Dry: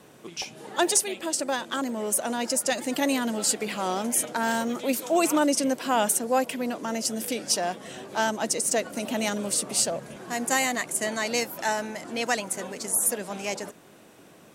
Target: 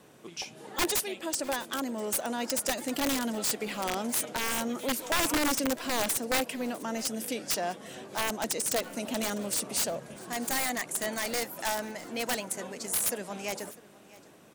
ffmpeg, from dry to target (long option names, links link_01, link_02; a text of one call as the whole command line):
ffmpeg -i in.wav -af "aeval=exprs='(mod(7.08*val(0)+1,2)-1)/7.08':channel_layout=same,aecho=1:1:651:0.0944,volume=-4dB" out.wav